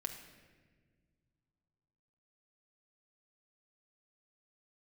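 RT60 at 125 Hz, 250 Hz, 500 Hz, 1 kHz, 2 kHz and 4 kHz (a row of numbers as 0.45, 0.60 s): 3.2, 2.6, 1.9, 1.2, 1.4, 1.1 s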